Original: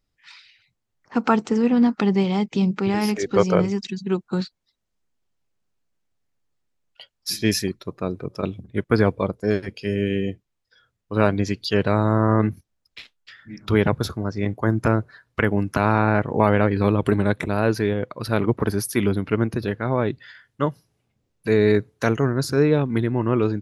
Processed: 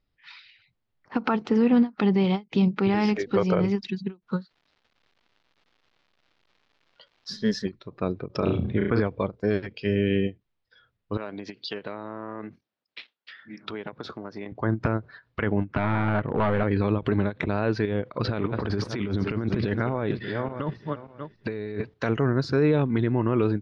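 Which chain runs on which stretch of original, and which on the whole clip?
4.27–7.65 s: static phaser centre 490 Hz, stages 8 + crackle 380 per s -50 dBFS
8.35–9.02 s: treble shelf 6.8 kHz -10 dB + flutter echo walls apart 5.9 m, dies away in 0.27 s + level flattener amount 50%
11.17–14.52 s: compression 16:1, threshold -26 dBFS + high-pass 250 Hz
15.60–16.63 s: overload inside the chain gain 17.5 dB + distance through air 300 m
17.85–21.94 s: backward echo that repeats 293 ms, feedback 44%, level -13.5 dB + low-pass 8.9 kHz + compressor with a negative ratio -27 dBFS
whole clip: low-pass 4.4 kHz 24 dB/octave; peak limiter -12.5 dBFS; endings held to a fixed fall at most 340 dB/s

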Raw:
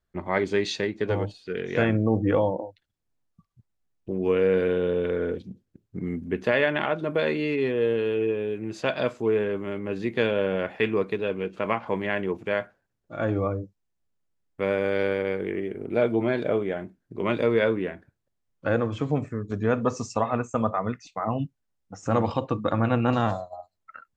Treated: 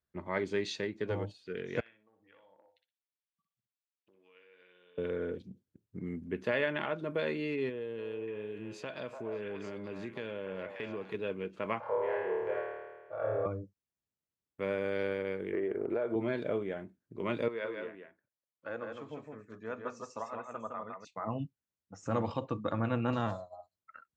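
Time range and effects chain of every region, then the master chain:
1.80–4.98 s: compression 12:1, threshold -34 dBFS + band-pass filter 3 kHz, Q 1.2 + feedback delay 61 ms, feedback 18%, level -7 dB
7.69–11.14 s: compression 3:1, threshold -29 dBFS + repeats whose band climbs or falls 293 ms, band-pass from 830 Hz, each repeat 1.4 oct, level -0.5 dB
11.80–13.46 s: FFT filter 100 Hz 0 dB, 190 Hz -18 dB, 270 Hz -17 dB, 470 Hz +13 dB, 1.1 kHz +7 dB, 3.8 kHz -11 dB + compression 2:1, threshold -32 dBFS + flutter echo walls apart 4.6 m, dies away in 1.4 s
15.53–16.16 s: high-order bell 790 Hz +11.5 dB 2.8 oct + compression 8:1, threshold -20 dBFS
17.48–21.05 s: high-pass 1 kHz 6 dB/octave + treble shelf 2.3 kHz -10 dB + delay 161 ms -4 dB
whole clip: high-pass 62 Hz; band-stop 750 Hz, Q 12; trim -8.5 dB

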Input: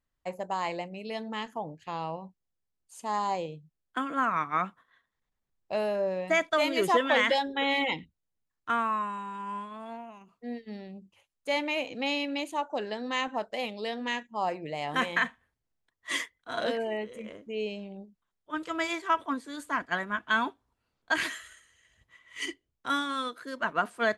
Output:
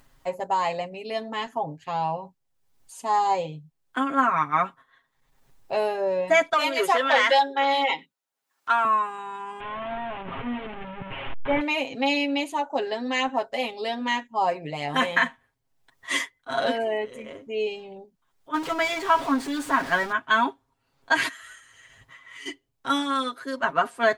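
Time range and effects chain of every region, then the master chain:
6.53–8.85 s: high-pass 450 Hz + peaking EQ 1.4 kHz +4 dB 0.3 oct + transformer saturation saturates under 1.4 kHz
9.60–11.61 s: one-bit delta coder 16 kbps, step -33.5 dBFS + bass shelf 120 Hz +8 dB
18.54–20.12 s: jump at every zero crossing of -34 dBFS + treble shelf 7.8 kHz -11.5 dB
21.28–22.46 s: peaking EQ 1.4 kHz +5 dB 0.78 oct + compression, threshold -45 dBFS
whole clip: peaking EQ 850 Hz +4 dB 0.53 oct; upward compressor, threshold -47 dBFS; comb 7.4 ms, depth 82%; trim +2.5 dB

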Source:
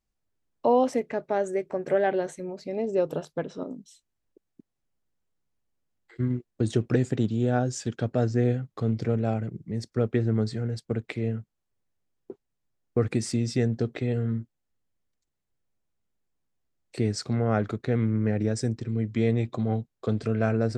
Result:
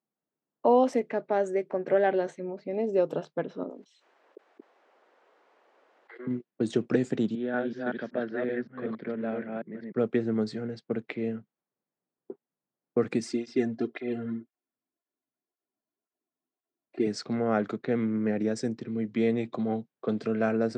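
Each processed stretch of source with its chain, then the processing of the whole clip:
3.69–6.27 s: high-pass 430 Hz 24 dB/octave + treble shelf 3.6 kHz +8.5 dB + level flattener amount 70%
7.35–9.92 s: chunks repeated in reverse 189 ms, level -1 dB + cabinet simulation 270–3500 Hz, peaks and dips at 310 Hz -5 dB, 470 Hz -6 dB, 770 Hz -9 dB, 1.2 kHz -4 dB, 1.7 kHz +5 dB, 2.7 kHz -6 dB
13.20–17.07 s: comb 2.9 ms, depth 70% + cancelling through-zero flanger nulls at 1.9 Hz, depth 3 ms
whole clip: level-controlled noise filter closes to 1.3 kHz, open at -21 dBFS; high-pass 170 Hz 24 dB/octave; treble shelf 8.6 kHz -12 dB

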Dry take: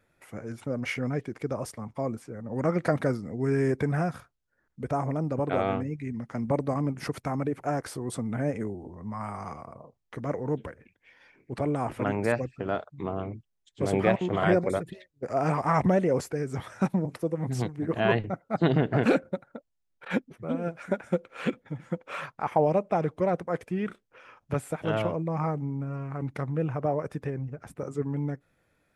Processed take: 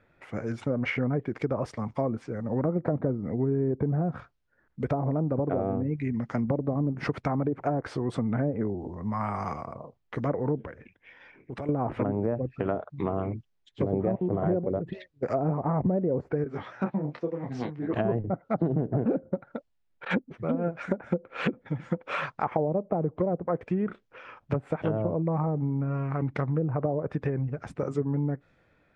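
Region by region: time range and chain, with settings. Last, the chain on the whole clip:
10.63–11.69 s: Butterworth band-stop 4.4 kHz, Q 8 + compression 3:1, threshold -41 dBFS
16.44–17.93 s: high-pass 220 Hz 6 dB/octave + distance through air 170 m + detune thickener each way 18 cents
whole clip: low-pass that closes with the level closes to 570 Hz, closed at -23.5 dBFS; compression 4:1, threshold -29 dBFS; level-controlled noise filter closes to 2.9 kHz, open at -31 dBFS; trim +5.5 dB

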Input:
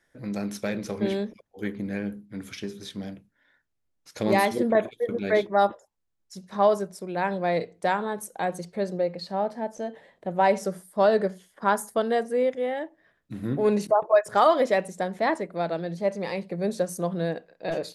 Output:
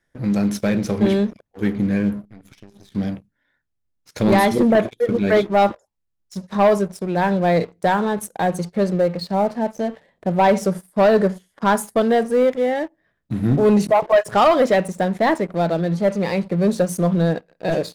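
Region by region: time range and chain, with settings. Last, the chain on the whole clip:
2.24–2.92 s: partial rectifier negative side -3 dB + compression 5:1, threshold -49 dBFS
whole clip: tone controls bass +7 dB, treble -1 dB; waveshaping leveller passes 2

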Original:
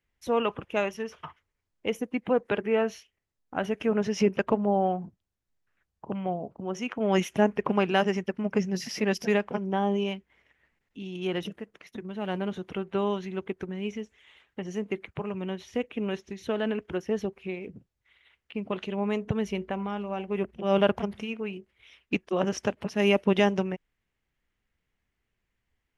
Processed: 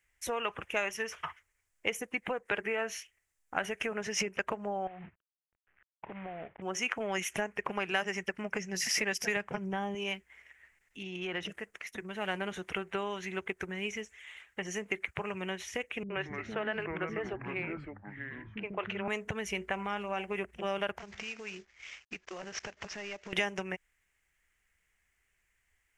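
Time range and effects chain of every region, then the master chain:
4.87–6.62 s: CVSD coder 16 kbps + compression 16:1, threshold -34 dBFS + distance through air 340 m
9.36–9.95 s: expander -43 dBFS + peaking EQ 130 Hz +14.5 dB 0.99 oct
11.03–11.49 s: low-pass 6.6 kHz + treble shelf 4.8 kHz -9 dB + compression 4:1, threshold -31 dBFS
16.03–19.08 s: low-pass 2.4 kHz + bands offset in time lows, highs 70 ms, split 300 Hz + ever faster or slower copies 132 ms, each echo -5 st, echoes 2, each echo -6 dB
20.98–23.33 s: CVSD coder 32 kbps + compression 12:1, threshold -37 dBFS
whole clip: bass shelf 110 Hz -5.5 dB; compression 10:1, threshold -29 dBFS; graphic EQ 125/250/500/1000/2000/4000/8000 Hz -8/-12/-5/-4/+6/-8/+9 dB; trim +6 dB

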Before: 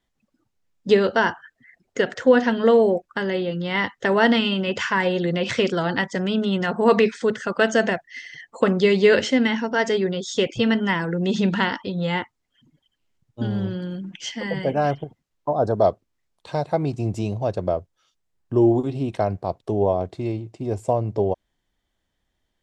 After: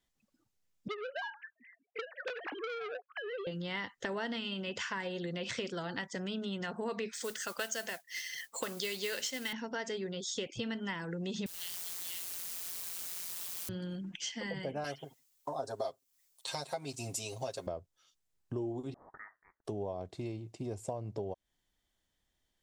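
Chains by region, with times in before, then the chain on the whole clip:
0.88–3.47 s: formants replaced by sine waves + compression 10:1, threshold -17 dBFS + transformer saturation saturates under 1.6 kHz
7.13–9.53 s: RIAA curve recording + modulation noise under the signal 17 dB
11.46–13.69 s: inverse Chebyshev band-stop 130–690 Hz, stop band 80 dB + word length cut 6-bit, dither triangular + ring modulator 88 Hz
14.84–17.67 s: RIAA curve recording + comb 7.5 ms, depth 94%
18.94–19.65 s: steep high-pass 1.5 kHz 72 dB/octave + frequency inversion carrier 3.4 kHz
whole clip: treble shelf 3.6 kHz +9.5 dB; compression 4:1, threshold -29 dBFS; trim -7.5 dB

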